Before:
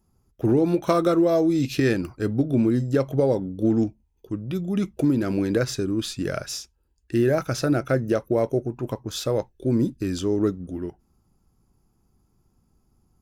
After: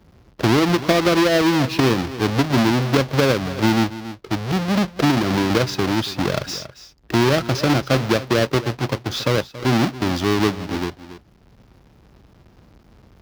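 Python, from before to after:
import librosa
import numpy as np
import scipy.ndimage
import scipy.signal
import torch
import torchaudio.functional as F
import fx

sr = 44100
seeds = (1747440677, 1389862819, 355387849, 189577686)

p1 = fx.halfwave_hold(x, sr)
p2 = scipy.signal.sosfilt(scipy.signal.butter(2, 43.0, 'highpass', fs=sr, output='sos'), p1)
p3 = fx.high_shelf_res(p2, sr, hz=6400.0, db=-7.0, q=1.5)
p4 = p3 + fx.echo_single(p3, sr, ms=278, db=-17.0, dry=0)
y = fx.band_squash(p4, sr, depth_pct=40)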